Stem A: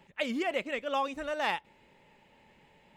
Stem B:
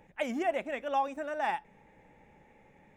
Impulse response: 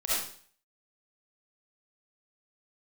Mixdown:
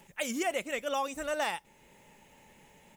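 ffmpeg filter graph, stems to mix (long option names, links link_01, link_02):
-filter_complex "[0:a]volume=2dB[link_01];[1:a]bass=frequency=250:gain=9,treble=frequency=4000:gain=13,aecho=1:1:4.4:0.71,aexciter=amount=10.8:drive=4:freq=3500,adelay=1.3,volume=-16.5dB[link_02];[link_01][link_02]amix=inputs=2:normalize=0,alimiter=limit=-21dB:level=0:latency=1:release=420"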